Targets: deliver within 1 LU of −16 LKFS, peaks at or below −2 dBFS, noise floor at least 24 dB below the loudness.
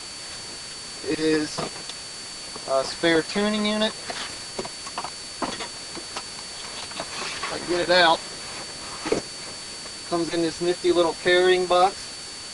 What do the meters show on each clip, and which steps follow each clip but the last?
interfering tone 4,500 Hz; level of the tone −38 dBFS; background noise floor −37 dBFS; target noise floor −49 dBFS; integrated loudness −25.0 LKFS; sample peak −5.5 dBFS; target loudness −16.0 LKFS
→ notch filter 4,500 Hz, Q 30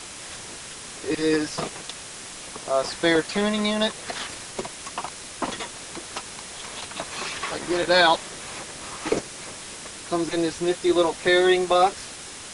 interfering tone none found; background noise floor −39 dBFS; target noise floor −49 dBFS
→ noise reduction from a noise print 10 dB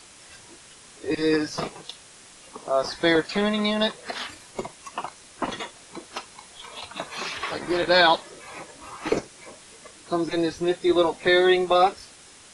background noise floor −49 dBFS; integrated loudness −24.0 LKFS; sample peak −6.0 dBFS; target loudness −16.0 LKFS
→ level +8 dB
brickwall limiter −2 dBFS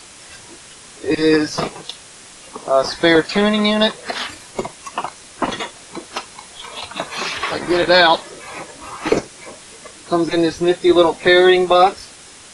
integrated loudness −16.5 LKFS; sample peak −2.0 dBFS; background noise floor −41 dBFS

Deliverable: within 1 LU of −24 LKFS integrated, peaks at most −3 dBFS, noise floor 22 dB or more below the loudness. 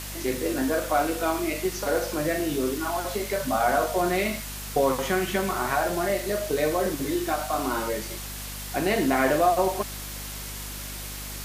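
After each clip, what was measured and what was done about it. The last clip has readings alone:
mains hum 50 Hz; hum harmonics up to 250 Hz; level of the hum −37 dBFS; background noise floor −36 dBFS; target noise floor −49 dBFS; integrated loudness −26.5 LKFS; sample peak −9.0 dBFS; target loudness −24.0 LKFS
→ mains-hum notches 50/100/150/200/250 Hz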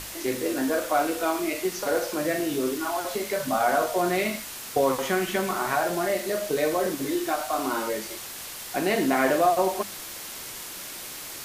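mains hum none found; background noise floor −38 dBFS; target noise floor −49 dBFS
→ noise reduction from a noise print 11 dB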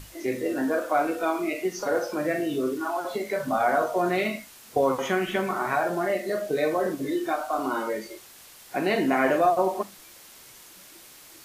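background noise floor −49 dBFS; integrated loudness −26.5 LKFS; sample peak −9.5 dBFS; target loudness −24.0 LKFS
→ level +2.5 dB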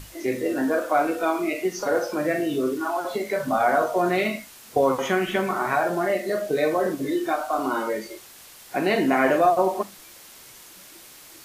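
integrated loudness −24.0 LKFS; sample peak −7.0 dBFS; background noise floor −47 dBFS

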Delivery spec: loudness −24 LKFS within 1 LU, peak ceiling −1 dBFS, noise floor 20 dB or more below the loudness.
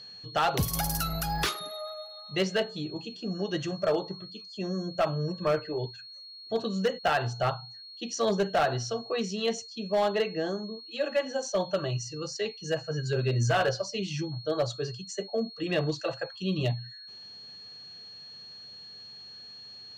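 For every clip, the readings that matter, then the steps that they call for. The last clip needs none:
share of clipped samples 0.7%; peaks flattened at −19.5 dBFS; interfering tone 4,300 Hz; level of the tone −44 dBFS; integrated loudness −30.5 LKFS; sample peak −19.5 dBFS; target loudness −24.0 LKFS
→ clipped peaks rebuilt −19.5 dBFS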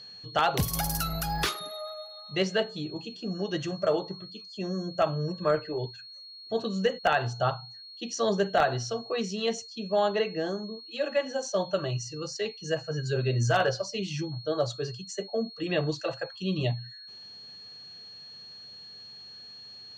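share of clipped samples 0.0%; interfering tone 4,300 Hz; level of the tone −44 dBFS
→ notch filter 4,300 Hz, Q 30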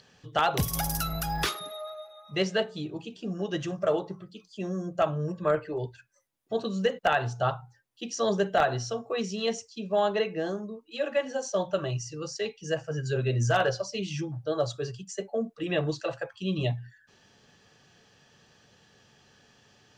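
interfering tone none found; integrated loudness −30.0 LKFS; sample peak −10.5 dBFS; target loudness −24.0 LKFS
→ level +6 dB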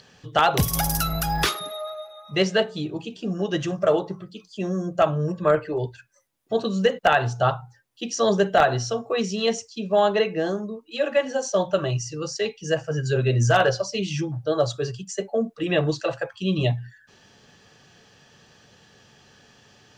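integrated loudness −24.0 LKFS; sample peak −4.5 dBFS; background noise floor −56 dBFS

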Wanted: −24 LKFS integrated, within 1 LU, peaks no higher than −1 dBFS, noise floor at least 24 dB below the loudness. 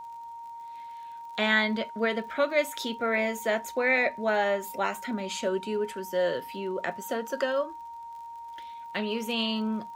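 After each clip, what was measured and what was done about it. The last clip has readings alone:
crackle rate 44 per second; interfering tone 930 Hz; level of the tone −39 dBFS; integrated loudness −28.5 LKFS; sample peak −11.5 dBFS; target loudness −24.0 LKFS
→ click removal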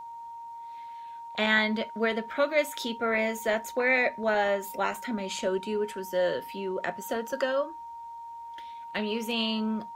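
crackle rate 0.20 per second; interfering tone 930 Hz; level of the tone −39 dBFS
→ notch filter 930 Hz, Q 30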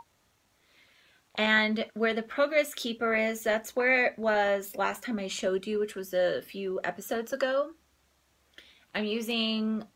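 interfering tone none found; integrated loudness −29.0 LKFS; sample peak −12.0 dBFS; target loudness −24.0 LKFS
→ level +5 dB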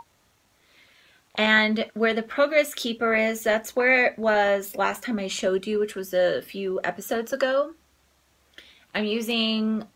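integrated loudness −24.0 LKFS; sample peak −7.0 dBFS; background noise floor −64 dBFS

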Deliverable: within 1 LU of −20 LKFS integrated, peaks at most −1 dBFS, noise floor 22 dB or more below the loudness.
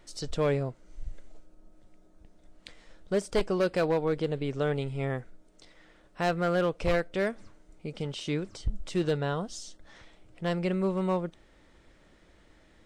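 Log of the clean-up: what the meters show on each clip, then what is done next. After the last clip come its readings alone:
share of clipped samples 0.9%; peaks flattened at −20.0 dBFS; integrated loudness −30.5 LKFS; sample peak −20.0 dBFS; target loudness −20.0 LKFS
→ clipped peaks rebuilt −20 dBFS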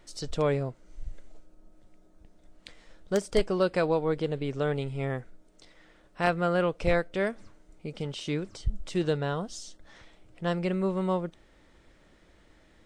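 share of clipped samples 0.0%; integrated loudness −29.5 LKFS; sample peak −11.0 dBFS; target loudness −20.0 LKFS
→ level +9.5 dB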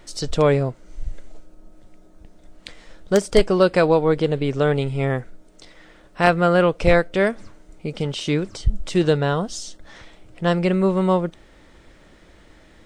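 integrated loudness −20.0 LKFS; sample peak −1.5 dBFS; background noise floor −51 dBFS

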